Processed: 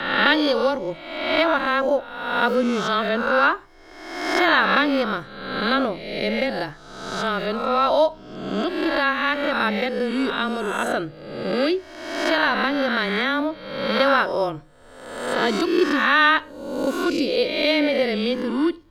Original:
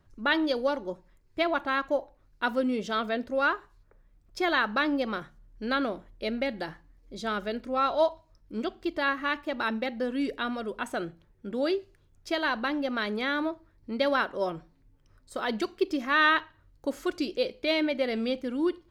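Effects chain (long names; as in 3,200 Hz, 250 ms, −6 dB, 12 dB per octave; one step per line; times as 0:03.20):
peak hold with a rise ahead of every peak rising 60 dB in 1.07 s
frequency shifter −16 Hz
level +5 dB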